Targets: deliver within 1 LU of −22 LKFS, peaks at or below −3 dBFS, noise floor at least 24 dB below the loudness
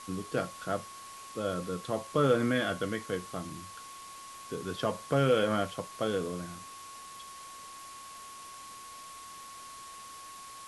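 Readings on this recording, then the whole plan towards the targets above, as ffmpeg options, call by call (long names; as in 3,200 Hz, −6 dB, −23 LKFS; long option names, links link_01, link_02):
interfering tone 1,100 Hz; level of the tone −46 dBFS; background noise floor −47 dBFS; target noise floor −56 dBFS; integrated loudness −32.0 LKFS; sample peak −15.0 dBFS; target loudness −22.0 LKFS
→ -af "bandreject=frequency=1100:width=30"
-af "afftdn=noise_reduction=9:noise_floor=-47"
-af "volume=10dB"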